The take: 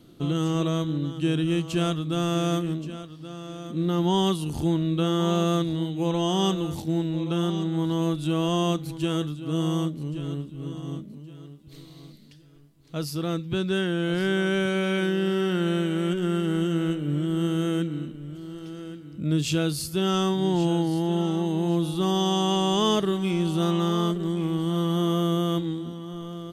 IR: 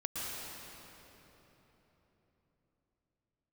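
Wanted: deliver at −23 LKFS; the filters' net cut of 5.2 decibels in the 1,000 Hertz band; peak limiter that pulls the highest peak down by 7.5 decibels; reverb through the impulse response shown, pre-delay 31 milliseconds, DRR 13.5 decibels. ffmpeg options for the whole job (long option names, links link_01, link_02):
-filter_complex "[0:a]equalizer=frequency=1000:width_type=o:gain=-7,alimiter=limit=-19.5dB:level=0:latency=1,asplit=2[link_01][link_02];[1:a]atrim=start_sample=2205,adelay=31[link_03];[link_02][link_03]afir=irnorm=-1:irlink=0,volume=-17dB[link_04];[link_01][link_04]amix=inputs=2:normalize=0,volume=6dB"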